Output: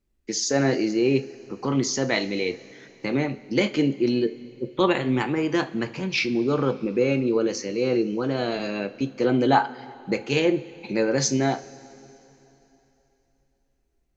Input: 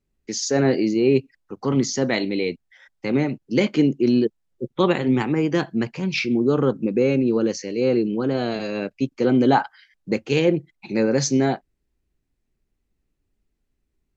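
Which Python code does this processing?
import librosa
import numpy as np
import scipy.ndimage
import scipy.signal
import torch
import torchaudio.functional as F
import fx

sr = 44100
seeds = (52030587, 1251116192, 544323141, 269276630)

y = fx.dynamic_eq(x, sr, hz=230.0, q=0.83, threshold_db=-30.0, ratio=4.0, max_db=-6)
y = fx.rev_double_slope(y, sr, seeds[0], early_s=0.29, late_s=3.3, knee_db=-18, drr_db=8.5)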